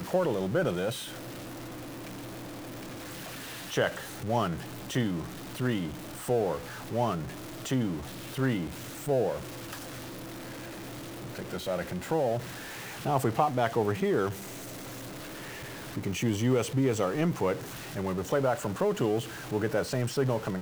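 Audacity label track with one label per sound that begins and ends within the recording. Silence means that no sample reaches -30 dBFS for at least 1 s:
3.730000	9.730000	sound
11.390000	14.310000	sound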